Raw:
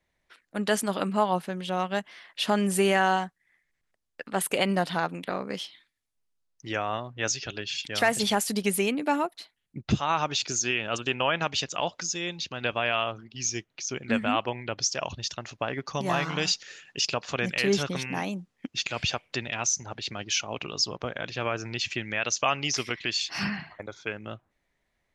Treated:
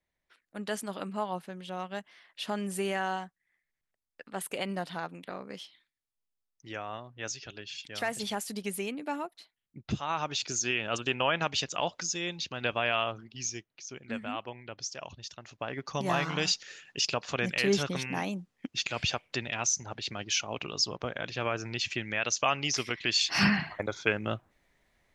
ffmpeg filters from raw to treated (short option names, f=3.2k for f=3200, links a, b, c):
-af "volume=14.5dB,afade=t=in:st=9.78:d=1.09:silence=0.446684,afade=t=out:st=13.25:d=0.42:silence=0.375837,afade=t=in:st=15.41:d=0.6:silence=0.375837,afade=t=in:st=22.99:d=0.46:silence=0.398107"